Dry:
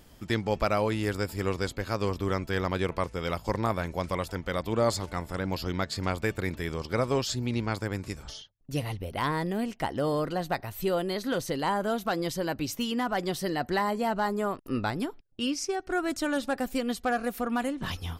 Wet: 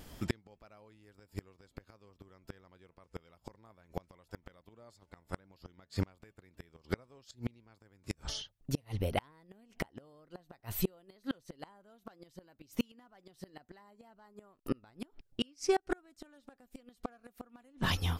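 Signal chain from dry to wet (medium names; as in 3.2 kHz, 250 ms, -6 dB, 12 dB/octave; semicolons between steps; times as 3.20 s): inverted gate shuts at -21 dBFS, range -35 dB; wow and flutter 28 cents; trim +3 dB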